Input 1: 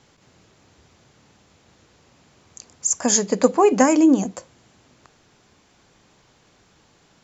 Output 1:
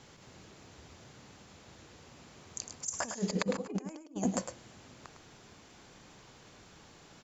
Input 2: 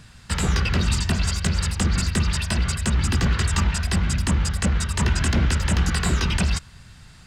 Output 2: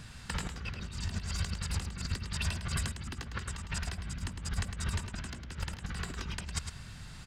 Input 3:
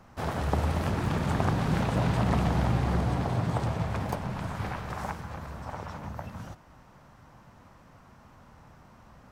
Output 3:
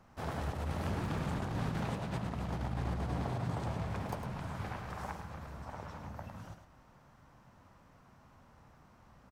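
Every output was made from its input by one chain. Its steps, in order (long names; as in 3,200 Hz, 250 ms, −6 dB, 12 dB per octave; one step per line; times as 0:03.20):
compressor whose output falls as the input rises −27 dBFS, ratio −0.5
on a send: single-tap delay 106 ms −8 dB
on the sum: level −8.5 dB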